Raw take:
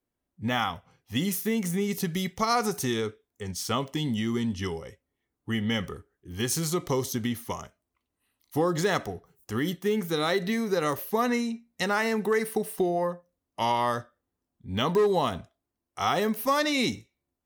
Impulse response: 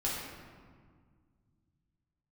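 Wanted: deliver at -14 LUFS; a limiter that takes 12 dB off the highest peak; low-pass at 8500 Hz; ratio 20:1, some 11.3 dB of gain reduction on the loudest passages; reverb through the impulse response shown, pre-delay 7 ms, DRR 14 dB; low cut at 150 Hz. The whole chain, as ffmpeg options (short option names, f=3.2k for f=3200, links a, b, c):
-filter_complex "[0:a]highpass=150,lowpass=8.5k,acompressor=threshold=-31dB:ratio=20,alimiter=level_in=5dB:limit=-24dB:level=0:latency=1,volume=-5dB,asplit=2[a][b];[1:a]atrim=start_sample=2205,adelay=7[c];[b][c]afir=irnorm=-1:irlink=0,volume=-19.5dB[d];[a][d]amix=inputs=2:normalize=0,volume=25.5dB"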